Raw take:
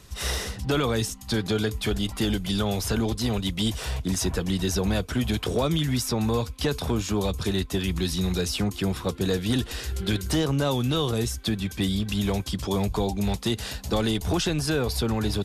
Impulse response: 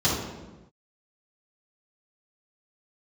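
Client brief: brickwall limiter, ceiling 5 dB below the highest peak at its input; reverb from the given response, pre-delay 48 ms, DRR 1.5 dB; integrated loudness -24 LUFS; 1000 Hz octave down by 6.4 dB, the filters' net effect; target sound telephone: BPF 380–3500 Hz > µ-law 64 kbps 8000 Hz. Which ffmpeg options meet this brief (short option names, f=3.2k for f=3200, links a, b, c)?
-filter_complex "[0:a]equalizer=f=1k:t=o:g=-8.5,alimiter=limit=-19.5dB:level=0:latency=1,asplit=2[a][b];[1:a]atrim=start_sample=2205,adelay=48[c];[b][c]afir=irnorm=-1:irlink=0,volume=-16dB[d];[a][d]amix=inputs=2:normalize=0,highpass=380,lowpass=3.5k,volume=7.5dB" -ar 8000 -c:a pcm_mulaw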